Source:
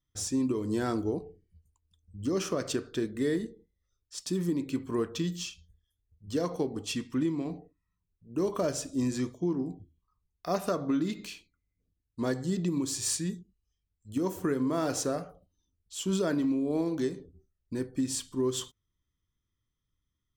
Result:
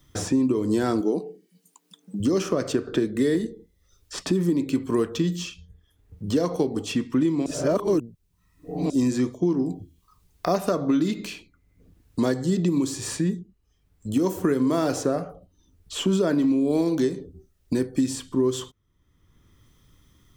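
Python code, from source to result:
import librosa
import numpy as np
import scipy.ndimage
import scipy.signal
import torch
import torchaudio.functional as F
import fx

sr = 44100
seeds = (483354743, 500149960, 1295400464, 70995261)

y = fx.brickwall_highpass(x, sr, low_hz=160.0, at=(1.0, 2.2))
y = fx.band_squash(y, sr, depth_pct=40, at=(2.87, 3.35))
y = fx.edit(y, sr, fx.reverse_span(start_s=7.46, length_s=1.44), tone=tone)
y = fx.peak_eq(y, sr, hz=350.0, db=4.0, octaves=3.0)
y = fx.band_squash(y, sr, depth_pct=70)
y = y * 10.0 ** (3.5 / 20.0)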